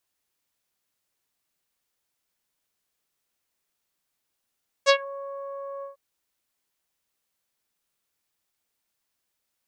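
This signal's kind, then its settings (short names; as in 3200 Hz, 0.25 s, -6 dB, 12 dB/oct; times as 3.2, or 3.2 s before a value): synth note saw C#5 24 dB/oct, low-pass 1000 Hz, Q 1.8, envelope 3 oct, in 0.19 s, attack 34 ms, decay 0.08 s, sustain -22 dB, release 0.13 s, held 0.97 s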